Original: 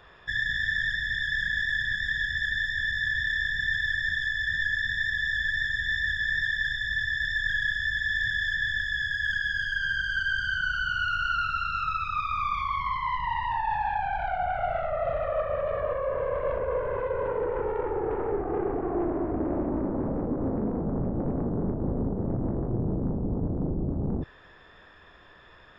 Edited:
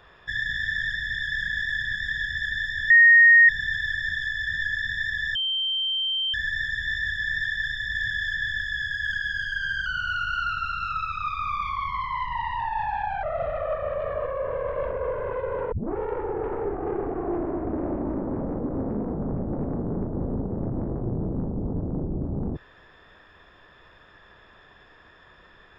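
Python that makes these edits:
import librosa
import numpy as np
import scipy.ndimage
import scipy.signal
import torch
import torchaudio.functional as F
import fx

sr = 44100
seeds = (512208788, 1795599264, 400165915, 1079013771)

y = fx.edit(x, sr, fx.bleep(start_s=2.9, length_s=0.59, hz=1860.0, db=-10.0),
    fx.insert_tone(at_s=5.35, length_s=0.99, hz=3130.0, db=-23.0),
    fx.cut(start_s=6.96, length_s=1.19),
    fx.cut(start_s=10.06, length_s=0.72),
    fx.cut(start_s=14.15, length_s=0.75),
    fx.tape_start(start_s=17.39, length_s=0.25), tone=tone)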